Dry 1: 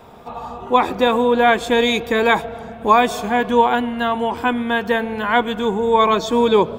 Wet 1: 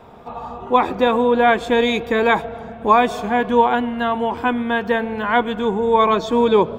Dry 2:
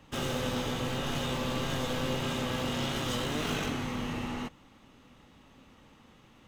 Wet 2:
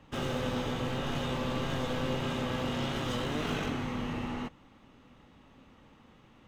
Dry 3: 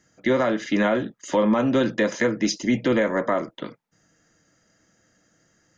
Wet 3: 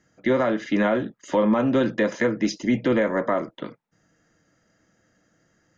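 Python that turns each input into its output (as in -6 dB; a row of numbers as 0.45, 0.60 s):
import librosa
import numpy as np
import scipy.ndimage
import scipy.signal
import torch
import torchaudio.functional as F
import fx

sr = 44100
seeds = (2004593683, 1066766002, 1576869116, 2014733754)

y = fx.high_shelf(x, sr, hz=4500.0, db=-10.0)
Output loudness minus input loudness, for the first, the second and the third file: -0.5, -1.0, -0.5 LU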